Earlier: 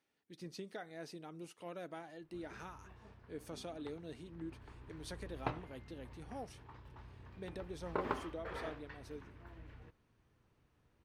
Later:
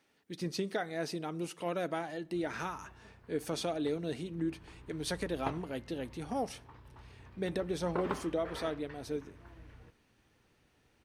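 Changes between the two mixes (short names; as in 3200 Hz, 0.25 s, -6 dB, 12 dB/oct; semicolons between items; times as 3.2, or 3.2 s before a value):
speech +10.5 dB; reverb: on, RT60 0.90 s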